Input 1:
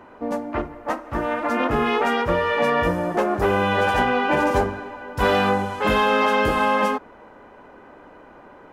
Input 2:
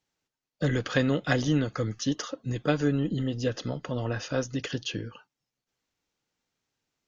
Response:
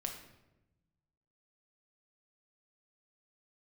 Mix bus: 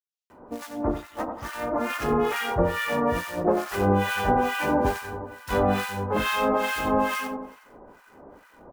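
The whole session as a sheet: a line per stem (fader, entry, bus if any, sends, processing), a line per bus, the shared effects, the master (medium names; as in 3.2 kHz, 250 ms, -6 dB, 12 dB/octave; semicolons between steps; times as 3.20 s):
-1.5 dB, 0.30 s, no send, echo send -7 dB, short-mantissa float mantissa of 2-bit
-11.5 dB, 0.00 s, no send, no echo send, steep high-pass 2.7 kHz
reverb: none
echo: feedback delay 92 ms, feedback 49%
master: bass shelf 410 Hz +3.5 dB; harmonic tremolo 2.3 Hz, depth 100%, crossover 1.2 kHz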